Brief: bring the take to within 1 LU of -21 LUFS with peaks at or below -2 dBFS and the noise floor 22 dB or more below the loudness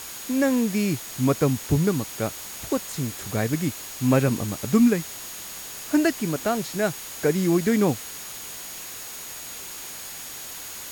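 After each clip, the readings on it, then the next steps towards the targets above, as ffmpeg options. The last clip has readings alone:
steady tone 6700 Hz; tone level -42 dBFS; noise floor -37 dBFS; noise floor target -48 dBFS; loudness -25.5 LUFS; peak -8.5 dBFS; loudness target -21.0 LUFS
-> -af "bandreject=f=6.7k:w=30"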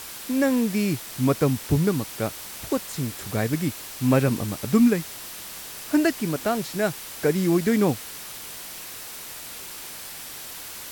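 steady tone none; noise floor -38 dBFS; noise floor target -48 dBFS
-> -af "afftdn=nr=10:nf=-38"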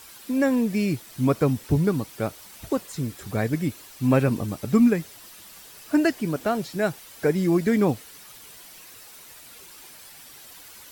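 noise floor -46 dBFS; noise floor target -47 dBFS
-> -af "afftdn=nr=6:nf=-46"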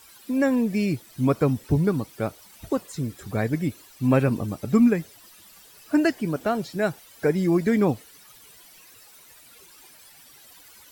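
noise floor -51 dBFS; loudness -24.5 LUFS; peak -9.0 dBFS; loudness target -21.0 LUFS
-> -af "volume=3.5dB"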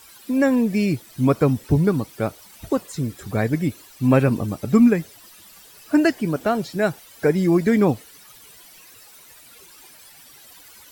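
loudness -21.0 LUFS; peak -5.5 dBFS; noise floor -48 dBFS

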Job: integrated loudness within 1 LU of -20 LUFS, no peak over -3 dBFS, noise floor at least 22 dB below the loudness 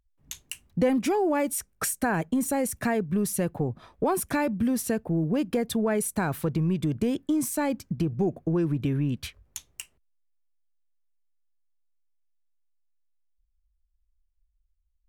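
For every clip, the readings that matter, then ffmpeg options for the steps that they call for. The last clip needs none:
loudness -27.0 LUFS; peak -13.5 dBFS; loudness target -20.0 LUFS
-> -af "volume=7dB"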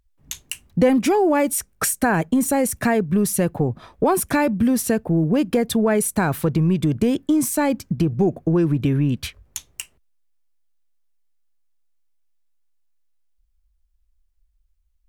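loudness -20.0 LUFS; peak -6.5 dBFS; noise floor -65 dBFS

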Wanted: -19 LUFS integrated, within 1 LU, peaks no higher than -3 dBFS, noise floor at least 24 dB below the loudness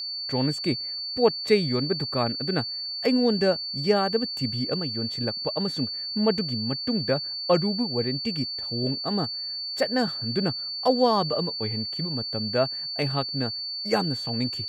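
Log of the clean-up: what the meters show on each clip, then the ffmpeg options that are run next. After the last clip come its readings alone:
steady tone 4500 Hz; tone level -30 dBFS; loudness -25.5 LUFS; peak -8.0 dBFS; loudness target -19.0 LUFS
-> -af "bandreject=f=4.5k:w=30"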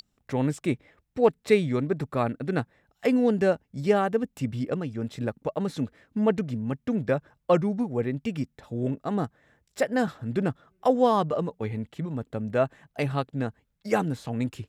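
steady tone none; loudness -27.5 LUFS; peak -9.0 dBFS; loudness target -19.0 LUFS
-> -af "volume=8.5dB,alimiter=limit=-3dB:level=0:latency=1"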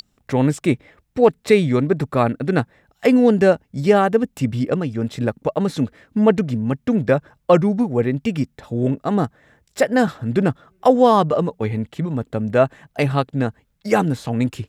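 loudness -19.5 LUFS; peak -3.0 dBFS; noise floor -66 dBFS

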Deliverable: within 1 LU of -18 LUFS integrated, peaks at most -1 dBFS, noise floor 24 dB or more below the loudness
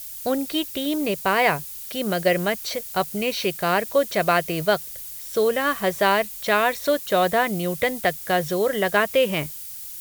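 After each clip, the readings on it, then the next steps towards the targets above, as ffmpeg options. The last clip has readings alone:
noise floor -36 dBFS; noise floor target -47 dBFS; loudness -22.5 LUFS; peak -5.0 dBFS; loudness target -18.0 LUFS
-> -af "afftdn=nr=11:nf=-36"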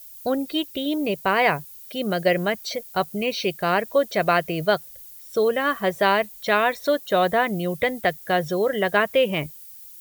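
noise floor -43 dBFS; noise floor target -47 dBFS
-> -af "afftdn=nr=6:nf=-43"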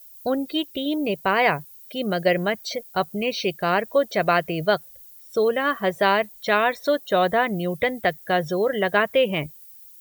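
noise floor -47 dBFS; loudness -23.0 LUFS; peak -5.0 dBFS; loudness target -18.0 LUFS
-> -af "volume=5dB,alimiter=limit=-1dB:level=0:latency=1"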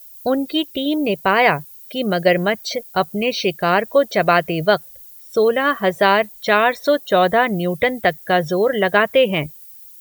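loudness -18.0 LUFS; peak -1.0 dBFS; noise floor -42 dBFS

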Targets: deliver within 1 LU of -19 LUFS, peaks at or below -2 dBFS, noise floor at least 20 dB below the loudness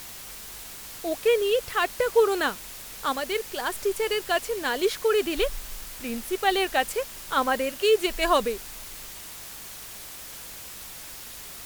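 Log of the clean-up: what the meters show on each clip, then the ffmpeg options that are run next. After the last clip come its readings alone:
hum 50 Hz; harmonics up to 200 Hz; hum level -57 dBFS; noise floor -41 dBFS; noise floor target -46 dBFS; loudness -25.5 LUFS; peak -8.5 dBFS; loudness target -19.0 LUFS
-> -af "bandreject=f=50:t=h:w=4,bandreject=f=100:t=h:w=4,bandreject=f=150:t=h:w=4,bandreject=f=200:t=h:w=4"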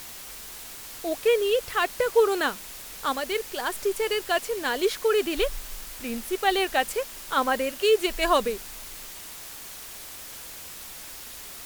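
hum none; noise floor -41 dBFS; noise floor target -46 dBFS
-> -af "afftdn=nr=6:nf=-41"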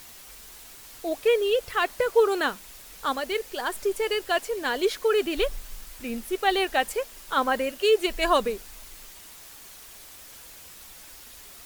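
noise floor -47 dBFS; loudness -25.5 LUFS; peak -9.0 dBFS; loudness target -19.0 LUFS
-> -af "volume=6.5dB"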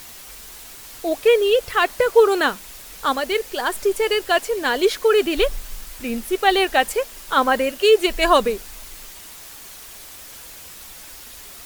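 loudness -19.0 LUFS; peak -2.5 dBFS; noise floor -40 dBFS

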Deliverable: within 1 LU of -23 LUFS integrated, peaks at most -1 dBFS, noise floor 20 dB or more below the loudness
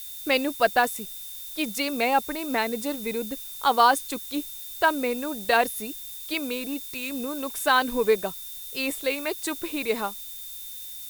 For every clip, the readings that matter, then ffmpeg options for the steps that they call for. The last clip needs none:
steady tone 3600 Hz; tone level -45 dBFS; noise floor -39 dBFS; noise floor target -46 dBFS; loudness -26.0 LUFS; peak -5.5 dBFS; loudness target -23.0 LUFS
-> -af "bandreject=f=3.6k:w=30"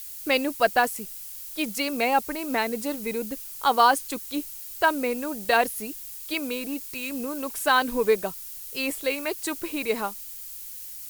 steady tone none; noise floor -39 dBFS; noise floor target -47 dBFS
-> -af "afftdn=nr=8:nf=-39"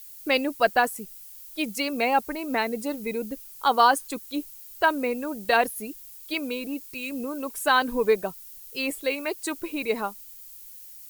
noise floor -45 dBFS; noise floor target -46 dBFS
-> -af "afftdn=nr=6:nf=-45"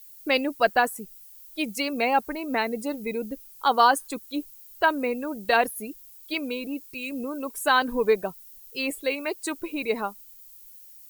noise floor -49 dBFS; loudness -26.0 LUFS; peak -6.0 dBFS; loudness target -23.0 LUFS
-> -af "volume=3dB"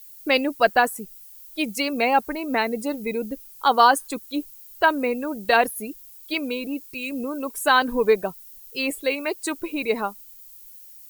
loudness -23.0 LUFS; peak -3.0 dBFS; noise floor -46 dBFS

